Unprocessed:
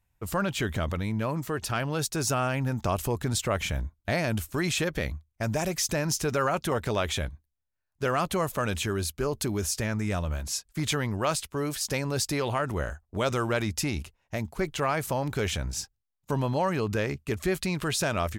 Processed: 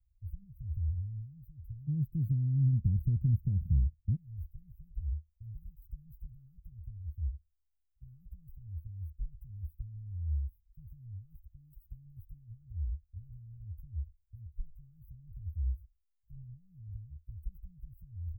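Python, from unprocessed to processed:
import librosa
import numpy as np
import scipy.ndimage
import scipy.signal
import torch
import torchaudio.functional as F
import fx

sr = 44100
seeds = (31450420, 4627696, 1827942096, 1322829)

y = fx.cheby2_bandstop(x, sr, low_hz=fx.steps((0.0, 450.0), (1.87, 860.0), (4.15, 390.0)), high_hz=8200.0, order=4, stop_db=80)
y = y * 10.0 ** (4.5 / 20.0)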